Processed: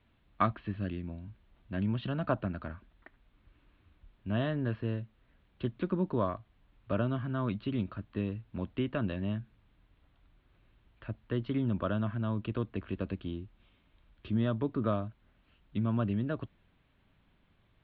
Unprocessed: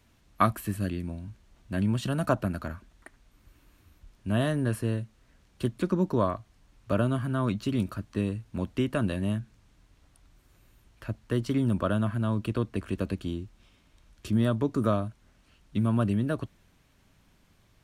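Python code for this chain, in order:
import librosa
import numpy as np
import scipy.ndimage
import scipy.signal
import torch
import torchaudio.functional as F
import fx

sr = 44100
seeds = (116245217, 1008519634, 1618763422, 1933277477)

y = scipy.signal.sosfilt(scipy.signal.butter(8, 3800.0, 'lowpass', fs=sr, output='sos'), x)
y = F.gain(torch.from_numpy(y), -5.0).numpy()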